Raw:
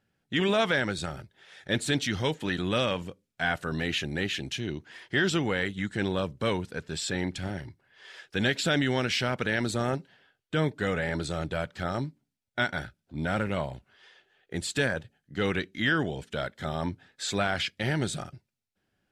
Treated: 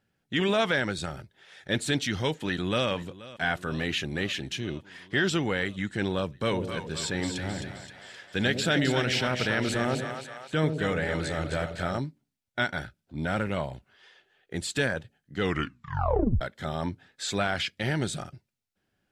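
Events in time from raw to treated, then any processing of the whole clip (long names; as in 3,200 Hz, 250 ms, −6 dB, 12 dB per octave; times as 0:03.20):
0:02.37–0:02.88: delay throw 480 ms, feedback 80%, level −18 dB
0:06.35–0:11.98: echo with a time of its own for lows and highs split 600 Hz, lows 95 ms, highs 262 ms, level −6 dB
0:15.41: tape stop 1.00 s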